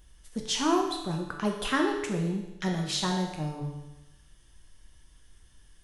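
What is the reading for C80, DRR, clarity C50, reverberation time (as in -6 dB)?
7.0 dB, 1.0 dB, 4.5 dB, 1.0 s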